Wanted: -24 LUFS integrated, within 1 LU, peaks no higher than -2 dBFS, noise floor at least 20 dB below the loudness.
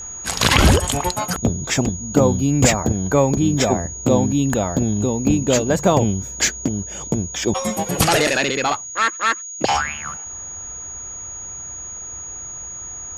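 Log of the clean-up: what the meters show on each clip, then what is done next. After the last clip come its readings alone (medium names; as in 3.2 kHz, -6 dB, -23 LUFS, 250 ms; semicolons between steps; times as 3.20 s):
steady tone 6.7 kHz; tone level -30 dBFS; loudness -20.0 LUFS; peak level -2.0 dBFS; loudness target -24.0 LUFS
-> band-stop 6.7 kHz, Q 30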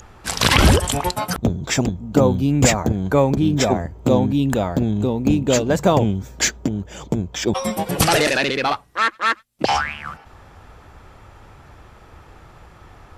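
steady tone not found; loudness -19.0 LUFS; peak level -2.0 dBFS; loudness target -24.0 LUFS
-> trim -5 dB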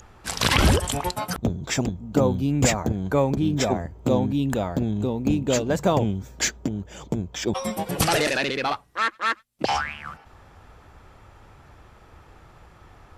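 loudness -24.0 LUFS; peak level -7.0 dBFS; noise floor -52 dBFS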